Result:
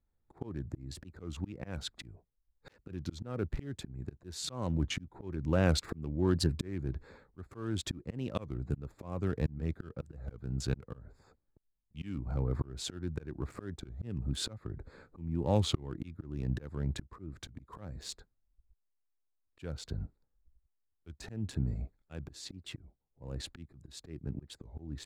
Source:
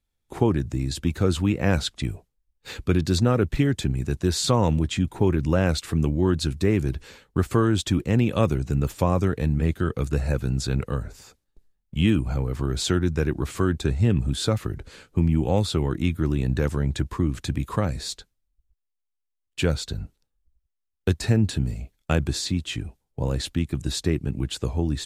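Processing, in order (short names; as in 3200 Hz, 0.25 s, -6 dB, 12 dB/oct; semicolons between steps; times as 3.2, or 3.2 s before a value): Wiener smoothing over 15 samples; auto swell 0.787 s; record warp 33 1/3 rpm, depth 160 cents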